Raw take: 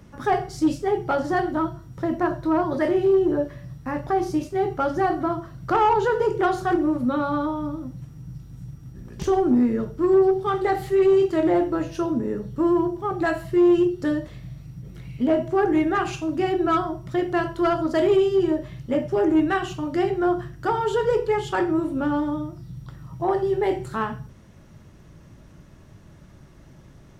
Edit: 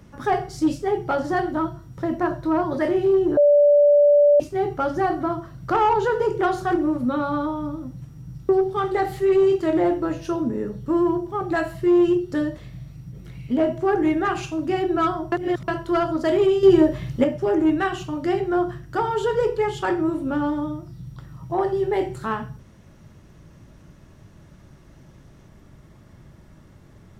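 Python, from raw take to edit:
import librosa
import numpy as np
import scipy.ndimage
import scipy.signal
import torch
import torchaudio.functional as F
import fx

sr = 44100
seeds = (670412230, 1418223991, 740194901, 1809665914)

y = fx.edit(x, sr, fx.bleep(start_s=3.37, length_s=1.03, hz=582.0, db=-11.0),
    fx.cut(start_s=8.49, length_s=1.7),
    fx.reverse_span(start_s=17.02, length_s=0.36),
    fx.clip_gain(start_s=18.33, length_s=0.61, db=7.0), tone=tone)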